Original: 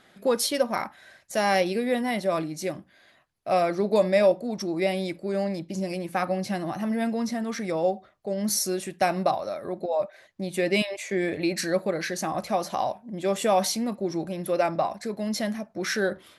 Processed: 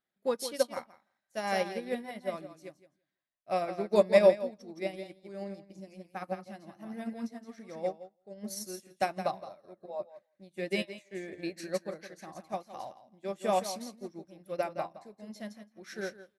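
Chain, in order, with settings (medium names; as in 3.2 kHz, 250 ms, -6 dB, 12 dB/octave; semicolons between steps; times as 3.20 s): feedback delay 167 ms, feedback 18%, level -6 dB; upward expansion 2.5:1, over -37 dBFS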